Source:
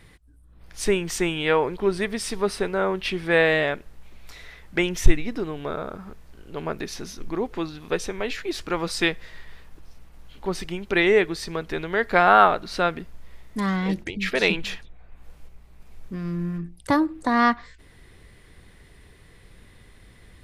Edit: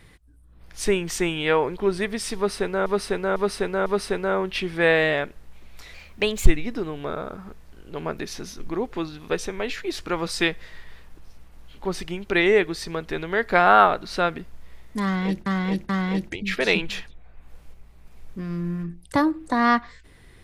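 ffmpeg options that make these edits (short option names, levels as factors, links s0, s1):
-filter_complex "[0:a]asplit=8[s0][s1][s2][s3][s4][s5][s6][s7];[s0]atrim=end=2.862[s8];[s1]atrim=start=2.358:end=2.862[s9];[s2]atrim=start=2.358:end=2.862[s10];[s3]atrim=start=2.358:end=4.444[s11];[s4]atrim=start=4.44:end=5.08,asetpts=PTS-STARTPTS,asetrate=52920,aresample=44100[s12];[s5]atrim=start=5.076:end=14.072[s13];[s6]atrim=start=13.638:end=14.072[s14];[s7]atrim=start=13.638[s15];[s8][s9]acrossfade=d=0.004:c1=hsin:c2=hsin[s16];[s16][s10]acrossfade=d=0.004:c1=hsin:c2=hsin[s17];[s17][s11]acrossfade=d=0.004:c1=hsin:c2=hsin[s18];[s18][s12]acrossfade=d=0.004:c1=hsin:c2=hsin[s19];[s19][s13]acrossfade=d=0.004:c1=hsin:c2=hsin[s20];[s20][s14]acrossfade=d=0.004:c1=hsin:c2=hsin[s21];[s21][s15]acrossfade=d=0.004:c1=hsin:c2=hsin"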